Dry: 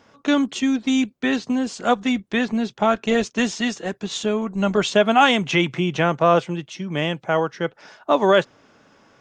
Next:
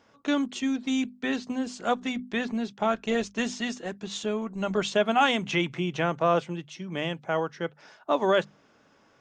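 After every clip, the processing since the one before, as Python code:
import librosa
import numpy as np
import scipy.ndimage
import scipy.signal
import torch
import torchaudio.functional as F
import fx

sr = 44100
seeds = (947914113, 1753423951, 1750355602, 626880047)

y = fx.hum_notches(x, sr, base_hz=50, count=5)
y = y * 10.0 ** (-7.0 / 20.0)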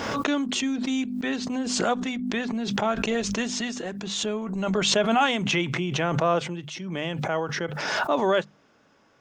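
y = fx.pre_swell(x, sr, db_per_s=31.0)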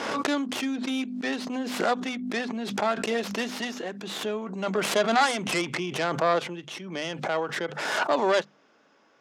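y = fx.tracing_dist(x, sr, depth_ms=0.46)
y = fx.bandpass_edges(y, sr, low_hz=250.0, high_hz=6800.0)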